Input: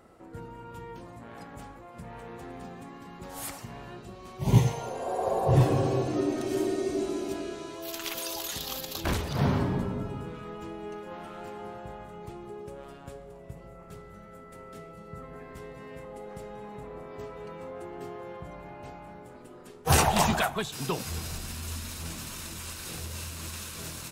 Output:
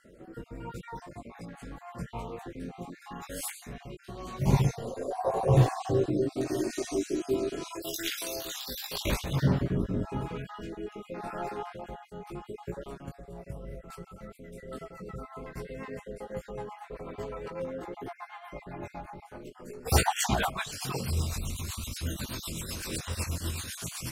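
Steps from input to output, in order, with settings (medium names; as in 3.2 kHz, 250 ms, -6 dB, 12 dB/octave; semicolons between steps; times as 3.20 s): random holes in the spectrogram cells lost 42%; 6.70–7.77 s: treble shelf 4.7 kHz +6.5 dB; in parallel at 0 dB: compression, threshold -38 dBFS, peak gain reduction 20.5 dB; on the sum: chorus voices 4, 0.49 Hz, delay 19 ms, depth 3.8 ms; rotary cabinet horn 0.85 Hz, later 8 Hz, at 13.21 s; trim +4 dB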